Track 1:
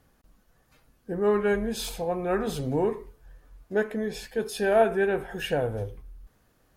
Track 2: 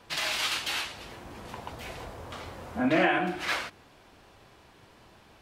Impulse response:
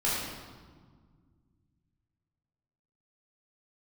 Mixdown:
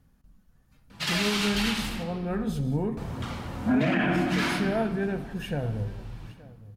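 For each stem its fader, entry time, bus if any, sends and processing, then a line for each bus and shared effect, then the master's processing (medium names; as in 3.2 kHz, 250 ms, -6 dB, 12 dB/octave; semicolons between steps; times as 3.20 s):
-7.0 dB, 0.00 s, send -21.5 dB, echo send -19.5 dB, none
+3.0 dB, 0.90 s, muted 2.03–2.97 s, send -10 dB, no echo send, high-pass 110 Hz; flange 1.3 Hz, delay 0.4 ms, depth 3.7 ms, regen -24%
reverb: on, RT60 1.7 s, pre-delay 11 ms
echo: delay 872 ms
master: resonant low shelf 290 Hz +9 dB, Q 1.5; peak limiter -16 dBFS, peak gain reduction 10.5 dB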